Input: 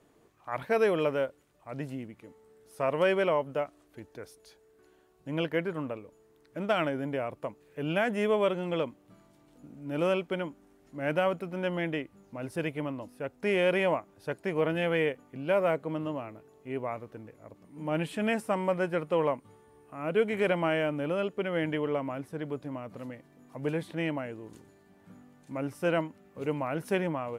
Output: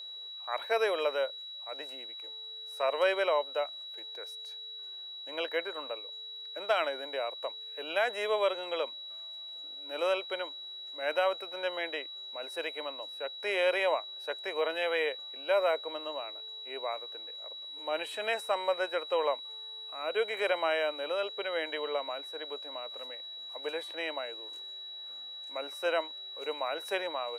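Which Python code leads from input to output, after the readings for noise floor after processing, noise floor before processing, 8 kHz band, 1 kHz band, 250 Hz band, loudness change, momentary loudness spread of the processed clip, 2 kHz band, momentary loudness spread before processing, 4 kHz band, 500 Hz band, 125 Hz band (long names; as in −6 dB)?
−44 dBFS, −63 dBFS, can't be measured, 0.0 dB, −15.5 dB, −2.5 dB, 12 LU, 0.0 dB, 17 LU, +9.5 dB, −2.5 dB, below −35 dB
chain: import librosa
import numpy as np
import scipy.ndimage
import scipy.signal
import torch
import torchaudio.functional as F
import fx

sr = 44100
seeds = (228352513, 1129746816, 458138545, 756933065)

y = x + 10.0 ** (-41.0 / 20.0) * np.sin(2.0 * np.pi * 3900.0 * np.arange(len(x)) / sr)
y = scipy.signal.sosfilt(scipy.signal.butter(4, 480.0, 'highpass', fs=sr, output='sos'), y)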